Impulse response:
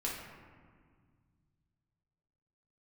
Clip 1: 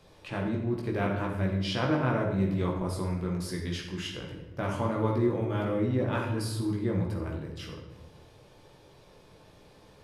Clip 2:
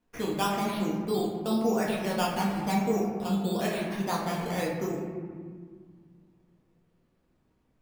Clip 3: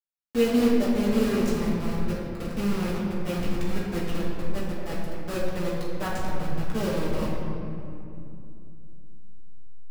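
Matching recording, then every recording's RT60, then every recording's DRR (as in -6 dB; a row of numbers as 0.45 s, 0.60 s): 2; 1.1 s, 1.8 s, 2.7 s; -1.5 dB, -5.0 dB, -8.5 dB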